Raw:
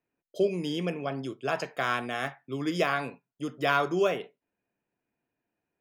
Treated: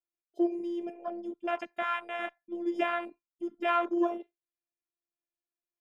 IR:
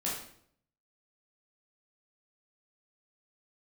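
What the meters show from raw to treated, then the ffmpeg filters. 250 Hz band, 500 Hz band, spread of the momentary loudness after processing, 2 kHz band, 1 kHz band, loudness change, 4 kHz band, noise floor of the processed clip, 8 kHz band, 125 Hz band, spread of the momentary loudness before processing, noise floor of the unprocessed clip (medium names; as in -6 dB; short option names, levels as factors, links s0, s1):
0.0 dB, -4.5 dB, 12 LU, -5.5 dB, -2.0 dB, -3.0 dB, -9.0 dB, under -85 dBFS, under -15 dB, under -30 dB, 12 LU, under -85 dBFS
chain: -af "afftfilt=real='hypot(re,im)*cos(PI*b)':imag='0':win_size=512:overlap=0.75,afwtdn=0.0178"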